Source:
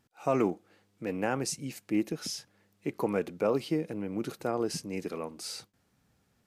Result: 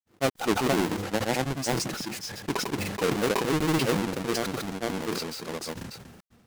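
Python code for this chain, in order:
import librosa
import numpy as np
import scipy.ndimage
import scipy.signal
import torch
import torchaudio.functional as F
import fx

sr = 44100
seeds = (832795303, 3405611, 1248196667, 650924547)

y = fx.halfwave_hold(x, sr)
y = fx.granulator(y, sr, seeds[0], grain_ms=100.0, per_s=20.0, spray_ms=469.0, spread_st=0)
y = fx.sustainer(y, sr, db_per_s=39.0)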